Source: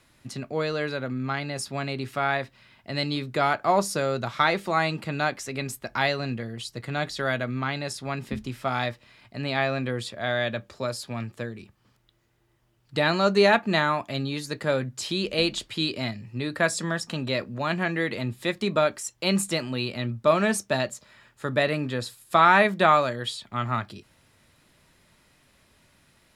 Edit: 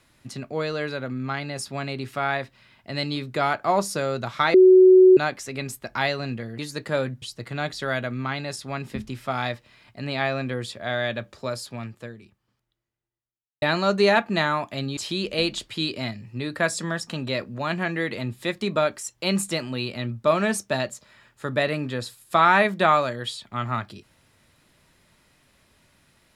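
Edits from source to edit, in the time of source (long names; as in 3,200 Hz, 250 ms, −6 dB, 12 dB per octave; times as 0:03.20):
0:04.54–0:05.17: beep over 372 Hz −8.5 dBFS
0:10.96–0:12.99: fade out quadratic
0:14.34–0:14.97: move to 0:06.59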